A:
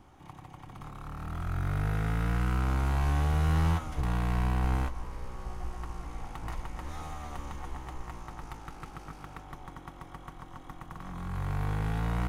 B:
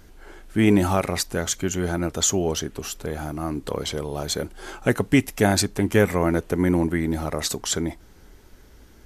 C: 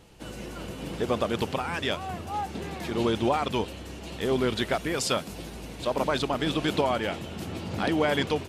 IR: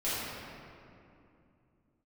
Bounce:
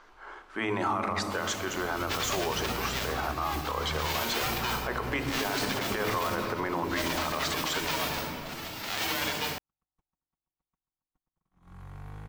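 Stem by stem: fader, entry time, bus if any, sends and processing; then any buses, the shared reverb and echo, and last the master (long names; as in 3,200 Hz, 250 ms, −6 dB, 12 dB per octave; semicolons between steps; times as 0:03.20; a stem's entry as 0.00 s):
−12.0 dB, 0.45 s, no bus, no send, noise gate −37 dBFS, range −42 dB
−3.0 dB, 0.00 s, bus A, send −20.5 dB, parametric band 1,100 Hz +13.5 dB 0.79 octaves
−0.5 dB, 1.10 s, bus A, send −10 dB, spectral envelope flattened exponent 0.1; reverb reduction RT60 1.3 s; parametric band 10,000 Hz −7.5 dB 0.56 octaves
bus A: 0.0 dB, band-pass filter 480–4,700 Hz; brickwall limiter −16 dBFS, peak gain reduction 11 dB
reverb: on, RT60 2.6 s, pre-delay 4 ms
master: brickwall limiter −19.5 dBFS, peak gain reduction 8.5 dB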